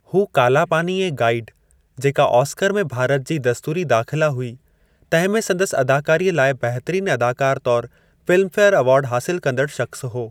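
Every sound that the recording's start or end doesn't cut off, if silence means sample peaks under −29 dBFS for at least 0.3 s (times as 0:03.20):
0:01.99–0:04.54
0:05.12–0:07.86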